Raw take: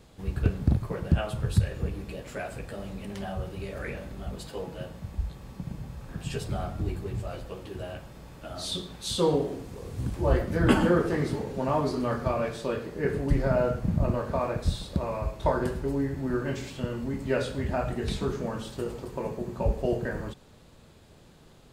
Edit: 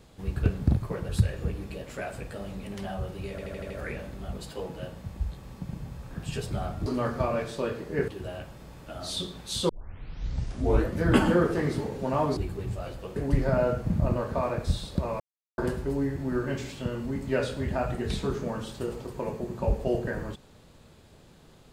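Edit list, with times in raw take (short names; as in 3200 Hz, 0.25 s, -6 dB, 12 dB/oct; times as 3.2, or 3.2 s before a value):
1.09–1.47 cut
3.68 stutter 0.08 s, 6 plays
6.84–7.63 swap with 11.92–13.14
9.24 tape start 1.27 s
15.18–15.56 mute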